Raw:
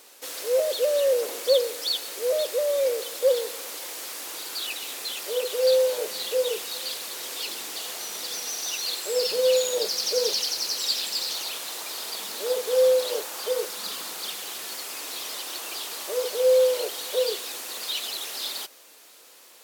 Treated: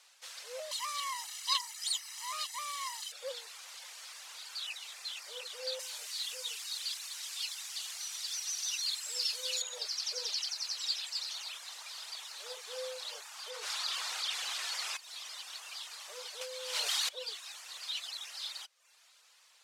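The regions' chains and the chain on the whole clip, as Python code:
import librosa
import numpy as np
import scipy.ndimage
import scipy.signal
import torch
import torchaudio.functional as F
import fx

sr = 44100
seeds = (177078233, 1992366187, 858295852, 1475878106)

y = fx.chain(x, sr, fx.lower_of_two(delay_ms=1.0),
    fx.highpass(hz=780.0, slope=12),
    fx.high_shelf(hz=3200.0, db=9.0), at=(0.71, 3.12))
y = fx.chain(y, sr, fx.highpass(hz=1000.0, slope=6),
    fx.high_shelf(hz=4800.0, db=9.0), at=(5.79, 9.62))
y = fx.chain(y, sr, fx.high_shelf(hz=8700.0, db=-6.5),
    fx.env_flatten(amount_pct=70), at=(13.5, 14.97))
y = fx.chain(y, sr, fx.highpass(hz=760.0, slope=6),
    fx.env_flatten(amount_pct=100), at=(16.41, 17.09))
y = scipy.signal.sosfilt(scipy.signal.bessel(4, 1100.0, 'highpass', norm='mag', fs=sr, output='sos'), y)
y = fx.dereverb_blind(y, sr, rt60_s=0.6)
y = scipy.signal.sosfilt(scipy.signal.butter(2, 7300.0, 'lowpass', fs=sr, output='sos'), y)
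y = y * librosa.db_to_amplitude(-7.0)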